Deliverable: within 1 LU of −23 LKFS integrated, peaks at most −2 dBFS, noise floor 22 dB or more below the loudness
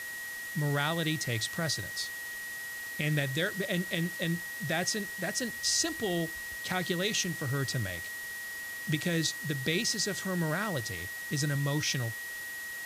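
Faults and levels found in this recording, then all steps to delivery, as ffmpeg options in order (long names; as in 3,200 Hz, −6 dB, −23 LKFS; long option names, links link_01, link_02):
interfering tone 1,900 Hz; level of the tone −38 dBFS; background noise floor −40 dBFS; target noise floor −54 dBFS; integrated loudness −32.0 LKFS; sample peak −15.5 dBFS; target loudness −23.0 LKFS
→ -af "bandreject=frequency=1900:width=30"
-af "afftdn=noise_reduction=14:noise_floor=-40"
-af "volume=9dB"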